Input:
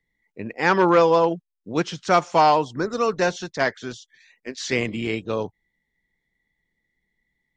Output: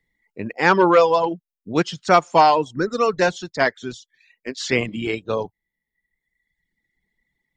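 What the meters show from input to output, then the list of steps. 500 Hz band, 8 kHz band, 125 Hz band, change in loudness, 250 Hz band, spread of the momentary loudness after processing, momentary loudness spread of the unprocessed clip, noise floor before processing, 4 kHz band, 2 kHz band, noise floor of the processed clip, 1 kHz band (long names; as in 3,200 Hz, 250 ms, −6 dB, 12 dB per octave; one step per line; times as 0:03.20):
+2.0 dB, can't be measured, +1.0 dB, +2.0 dB, +1.5 dB, 20 LU, 19 LU, −79 dBFS, +2.5 dB, +3.0 dB, −85 dBFS, +2.5 dB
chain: notch filter 6,000 Hz, Q 17
reverb reduction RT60 1.3 s
level +3.5 dB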